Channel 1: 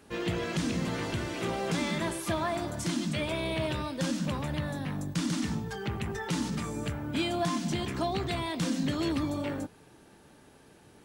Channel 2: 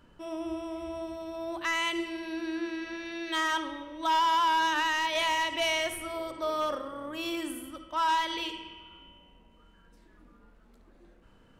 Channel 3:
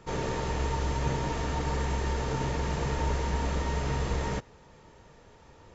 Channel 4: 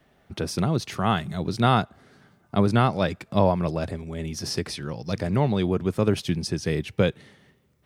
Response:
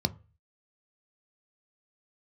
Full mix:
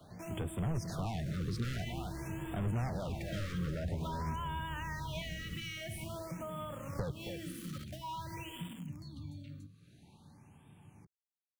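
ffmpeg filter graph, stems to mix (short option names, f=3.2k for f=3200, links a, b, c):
-filter_complex "[0:a]acompressor=threshold=-50dB:ratio=2,bandreject=f=191:t=h:w=4,bandreject=f=382:t=h:w=4,bandreject=f=573:t=h:w=4,bandreject=f=764:t=h:w=4,bandreject=f=955:t=h:w=4,bandreject=f=1.146k:t=h:w=4,bandreject=f=1.337k:t=h:w=4,acrossover=split=270|3000[a][b][c];[b]acompressor=threshold=-56dB:ratio=5[d];[a][d][c]amix=inputs=3:normalize=0,volume=-7dB,asplit=2[e][f];[f]volume=-7.5dB[g];[1:a]acrusher=bits=6:mix=0:aa=0.000001,volume=-5.5dB,asplit=2[h][i];[i]volume=-22dB[j];[2:a]alimiter=level_in=2.5dB:limit=-24dB:level=0:latency=1:release=454,volume=-2.5dB,adelay=1150,volume=-8dB,asplit=2[k][l];[l]volume=-20.5dB[m];[3:a]equalizer=f=670:w=1.5:g=6.5,asoftclip=type=tanh:threshold=-23dB,volume=0dB,asplit=3[n][o][p];[n]atrim=end=4.36,asetpts=PTS-STARTPTS,afade=t=out:st=4.356:d=0.004:c=hsin[q];[o]atrim=start=4.36:end=6.96,asetpts=PTS-STARTPTS,volume=0[r];[p]atrim=start=6.96,asetpts=PTS-STARTPTS,afade=t=in:d=0.004:c=hsin[s];[q][r][s]concat=n=3:v=0:a=1,asplit=2[t][u];[u]volume=-11dB[v];[4:a]atrim=start_sample=2205[w];[g][m]amix=inputs=2:normalize=0[x];[x][w]afir=irnorm=-1:irlink=0[y];[j][v]amix=inputs=2:normalize=0,aecho=0:1:272:1[z];[e][h][k][t][y][z]amix=inputs=6:normalize=0,aeval=exprs='0.0668*(abs(mod(val(0)/0.0668+3,4)-2)-1)':c=same,acrossover=split=140[aa][ab];[ab]acompressor=threshold=-41dB:ratio=4[ac];[aa][ac]amix=inputs=2:normalize=0,afftfilt=real='re*(1-between(b*sr/1024,750*pow(5200/750,0.5+0.5*sin(2*PI*0.49*pts/sr))/1.41,750*pow(5200/750,0.5+0.5*sin(2*PI*0.49*pts/sr))*1.41))':imag='im*(1-between(b*sr/1024,750*pow(5200/750,0.5+0.5*sin(2*PI*0.49*pts/sr))/1.41,750*pow(5200/750,0.5+0.5*sin(2*PI*0.49*pts/sr))*1.41))':win_size=1024:overlap=0.75"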